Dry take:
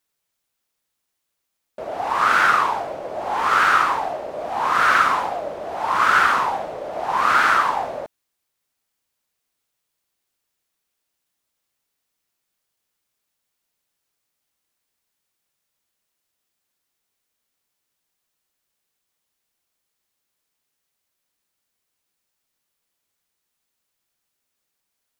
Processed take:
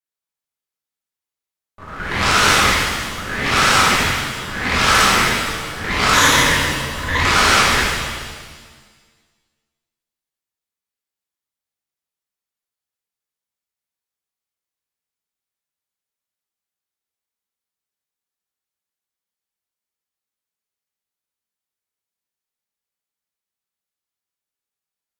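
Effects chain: added harmonics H 6 -13 dB, 7 -15 dB, 8 -7 dB, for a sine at -4 dBFS; 6.13–7.19 ripple EQ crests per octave 1.1, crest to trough 13 dB; shimmer reverb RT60 1.5 s, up +7 st, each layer -8 dB, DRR -7 dB; gain -6.5 dB

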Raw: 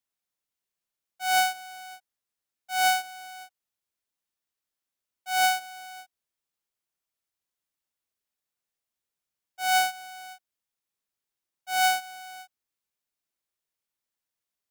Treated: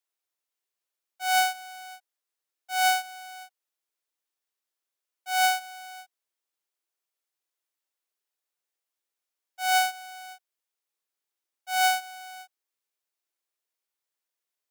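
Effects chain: steep high-pass 300 Hz 36 dB/oct

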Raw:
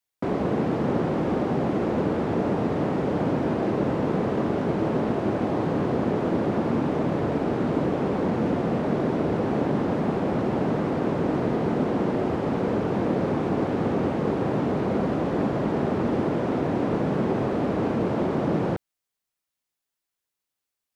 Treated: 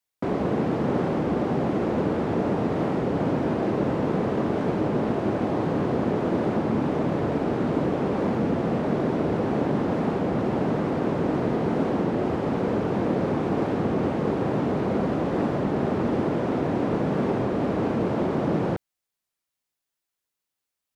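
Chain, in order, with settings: record warp 33 1/3 rpm, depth 100 cents

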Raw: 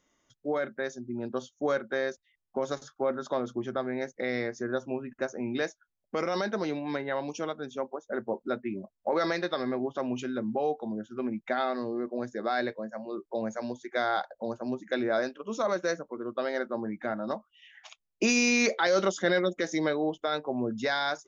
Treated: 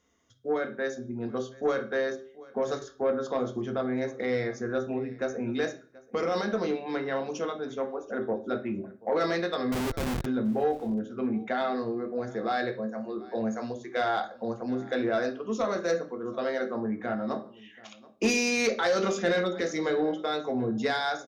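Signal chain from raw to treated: on a send at -4 dB: reverb RT60 0.45 s, pre-delay 3 ms; 9.72–10.26 on the sum: Schmitt trigger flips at -28 dBFS; echo 0.731 s -22.5 dB; added harmonics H 5 -20 dB, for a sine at -10 dBFS; gain -4 dB

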